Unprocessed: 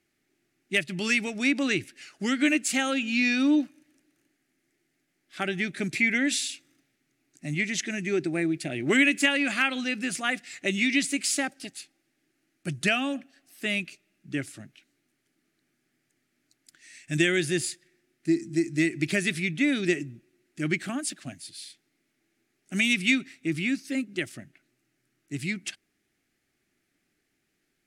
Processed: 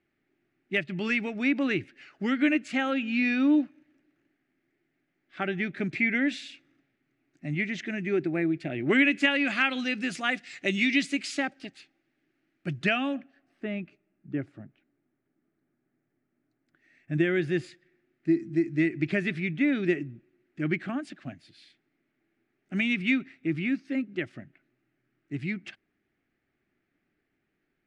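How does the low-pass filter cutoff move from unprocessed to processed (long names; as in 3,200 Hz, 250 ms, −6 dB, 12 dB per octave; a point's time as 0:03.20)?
0:08.79 2,300 Hz
0:09.79 4,800 Hz
0:10.85 4,800 Hz
0:11.71 2,800 Hz
0:13.08 2,800 Hz
0:13.67 1,100 Hz
0:16.99 1,100 Hz
0:17.55 2,100 Hz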